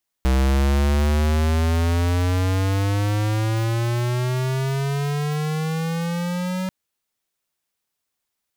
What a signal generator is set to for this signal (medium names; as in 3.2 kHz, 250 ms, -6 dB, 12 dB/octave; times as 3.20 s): gliding synth tone square, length 6.44 s, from 64.5 Hz, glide +18.5 st, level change -8 dB, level -17 dB